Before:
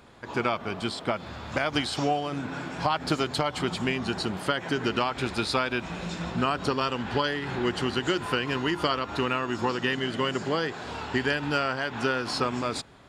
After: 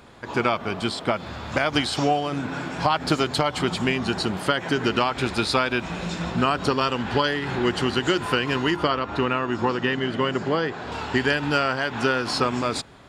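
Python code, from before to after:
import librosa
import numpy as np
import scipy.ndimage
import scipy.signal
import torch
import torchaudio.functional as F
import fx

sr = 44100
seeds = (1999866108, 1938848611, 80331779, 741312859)

y = fx.lowpass(x, sr, hz=2500.0, slope=6, at=(8.76, 10.92))
y = F.gain(torch.from_numpy(y), 4.5).numpy()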